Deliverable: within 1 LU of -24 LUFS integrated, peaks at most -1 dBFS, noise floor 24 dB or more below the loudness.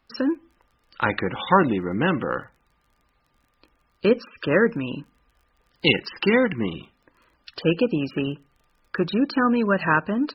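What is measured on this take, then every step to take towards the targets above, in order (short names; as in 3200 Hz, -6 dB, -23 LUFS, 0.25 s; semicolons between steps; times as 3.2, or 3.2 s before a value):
ticks 26/s; loudness -23.0 LUFS; peak -2.5 dBFS; loudness target -24.0 LUFS
-> de-click; gain -1 dB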